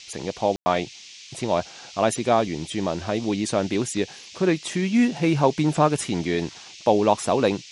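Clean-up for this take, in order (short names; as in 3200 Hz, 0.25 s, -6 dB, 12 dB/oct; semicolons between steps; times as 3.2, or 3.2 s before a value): room tone fill 0.56–0.66; noise print and reduce 24 dB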